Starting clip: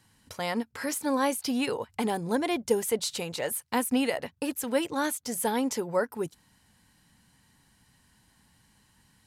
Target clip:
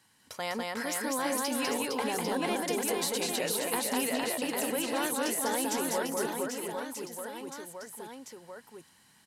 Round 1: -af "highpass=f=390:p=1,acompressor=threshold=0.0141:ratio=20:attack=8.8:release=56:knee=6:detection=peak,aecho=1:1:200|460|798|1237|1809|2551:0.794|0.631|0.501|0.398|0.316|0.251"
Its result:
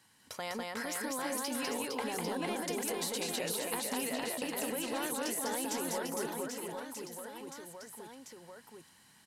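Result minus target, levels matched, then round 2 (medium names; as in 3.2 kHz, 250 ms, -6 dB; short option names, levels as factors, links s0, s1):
compression: peak gain reduction +6.5 dB
-af "highpass=f=390:p=1,acompressor=threshold=0.0316:ratio=20:attack=8.8:release=56:knee=6:detection=peak,aecho=1:1:200|460|798|1237|1809|2551:0.794|0.631|0.501|0.398|0.316|0.251"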